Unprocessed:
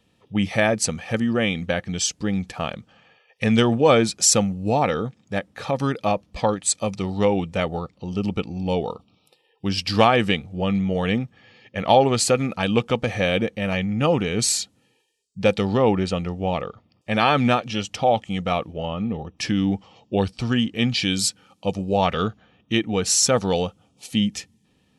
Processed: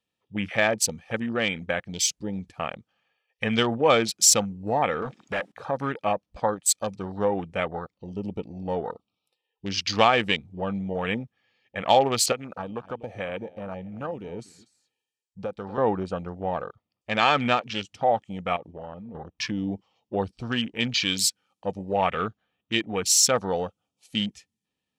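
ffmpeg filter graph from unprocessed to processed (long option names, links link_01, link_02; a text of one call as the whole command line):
ffmpeg -i in.wav -filter_complex "[0:a]asettb=1/sr,asplit=3[link_01][link_02][link_03];[link_01]atrim=end=5.024[link_04];[link_02]atrim=start=5.02:end=5.52,asetpts=PTS-STARTPTS,afade=type=in:duration=0.004:curve=qsin,afade=type=out:start_time=0.496:duration=0.004:curve=qsin,acompressor=threshold=-26dB:ratio=12:attack=3.2:release=140:knee=1:detection=peak,asplit=2[link_05][link_06];[link_06]highpass=frequency=720:poles=1,volume=28dB,asoftclip=type=tanh:threshold=-16.5dB[link_07];[link_05][link_07]amix=inputs=2:normalize=0,lowpass=frequency=5700:poles=1,volume=-6dB[link_08];[link_03]atrim=start=5.516[link_09];[link_04][link_08]acrossfade=duration=0.004:curve1=hsin:curve2=qsin[link_10];[link_10][link_09]acrossfade=duration=0.004:curve1=qsin:curve2=hsin,asettb=1/sr,asplit=3[link_11][link_12][link_13];[link_11]atrim=end=12.324[link_14];[link_12]atrim=start=12.32:end=15.78,asetpts=PTS-STARTPTS,afade=type=in:duration=0.004:curve=qsin,afade=type=out:start_time=3.456:duration=0.004:curve=qsin,acrossover=split=680|1600[link_15][link_16][link_17];[link_15]acompressor=threshold=-28dB:ratio=4[link_18];[link_16]acompressor=threshold=-34dB:ratio=4[link_19];[link_17]acompressor=threshold=-39dB:ratio=4[link_20];[link_18][link_19][link_20]amix=inputs=3:normalize=0,aecho=1:1:243:0.168,atrim=end_sample=152586[link_21];[link_13]atrim=start=15.776[link_22];[link_14][link_21]acrossfade=duration=0.004:curve1=hsin:curve2=qsin[link_23];[link_23][link_22]acrossfade=duration=0.004:curve1=qsin:curve2=hsin,asettb=1/sr,asplit=3[link_24][link_25][link_26];[link_24]atrim=end=18.564[link_27];[link_25]atrim=start=18.56:end=19.15,asetpts=PTS-STARTPTS,afade=type=in:duration=0.004:curve=qsin,afade=type=out:start_time=0.586:duration=0.004:curve=qsin,acompressor=threshold=-29dB:ratio=5:attack=3.2:release=140:knee=1:detection=peak,equalizer=frequency=2900:width=1.5:gain=-3.5,aeval=exprs='clip(val(0),-1,0.0422)':channel_layout=same[link_28];[link_26]atrim=start=19.146[link_29];[link_27][link_28]acrossfade=duration=0.004:curve1=hsin:curve2=qsin[link_30];[link_30][link_29]acrossfade=duration=0.004:curve1=qsin:curve2=hsin,afwtdn=0.0251,lowshelf=frequency=430:gain=-10" out.wav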